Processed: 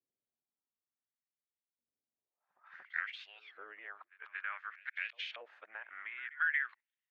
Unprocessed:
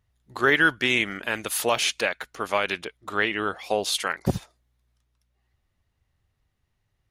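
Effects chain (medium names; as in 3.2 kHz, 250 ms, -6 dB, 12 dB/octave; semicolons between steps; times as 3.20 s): reverse the whole clip; low-pass 6.1 kHz; peaking EQ 2.2 kHz +4 dB 1.1 oct; compression 6:1, threshold -24 dBFS, peak gain reduction 11 dB; LFO band-pass saw up 0.56 Hz 450–4000 Hz; pre-echo 231 ms -21 dB; band-pass sweep 250 Hz -> 1.7 kHz, 2.12–2.77 s; trim -2 dB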